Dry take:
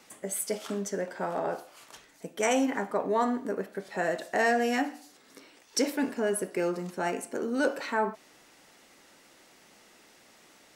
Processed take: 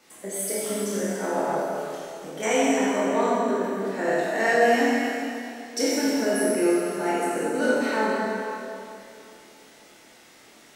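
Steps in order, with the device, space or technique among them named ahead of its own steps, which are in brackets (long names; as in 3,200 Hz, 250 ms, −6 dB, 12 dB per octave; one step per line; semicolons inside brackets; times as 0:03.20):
tunnel (flutter between parallel walls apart 4.4 metres, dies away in 0.24 s; convolution reverb RT60 2.7 s, pre-delay 14 ms, DRR −7 dB)
level −3 dB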